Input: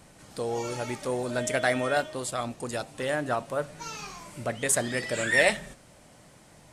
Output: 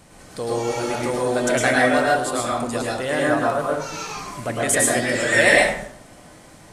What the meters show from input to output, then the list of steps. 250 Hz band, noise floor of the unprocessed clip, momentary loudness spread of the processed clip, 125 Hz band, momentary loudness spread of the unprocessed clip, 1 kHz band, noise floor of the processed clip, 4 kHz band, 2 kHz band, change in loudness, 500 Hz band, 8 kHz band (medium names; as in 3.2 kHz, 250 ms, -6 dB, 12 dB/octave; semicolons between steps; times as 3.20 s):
+10.0 dB, -55 dBFS, 14 LU, +6.5 dB, 13 LU, +9.5 dB, -46 dBFS, +7.5 dB, +8.5 dB, +8.5 dB, +8.5 dB, +7.5 dB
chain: plate-style reverb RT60 0.64 s, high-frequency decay 0.6×, pre-delay 95 ms, DRR -4 dB; trim +3.5 dB